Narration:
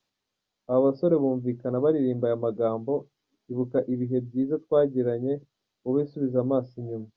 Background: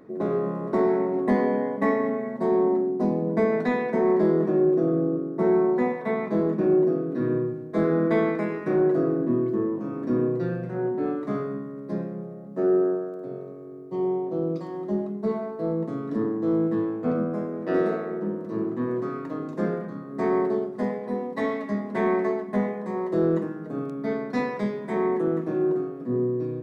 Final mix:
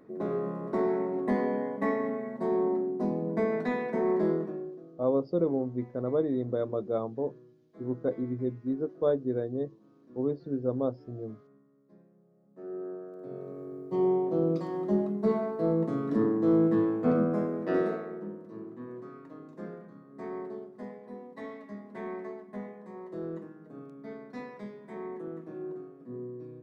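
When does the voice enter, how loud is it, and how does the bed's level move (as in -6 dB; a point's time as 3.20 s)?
4.30 s, -5.0 dB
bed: 4.32 s -6 dB
4.91 s -29 dB
12.21 s -29 dB
13.59 s 0 dB
17.46 s 0 dB
18.61 s -15 dB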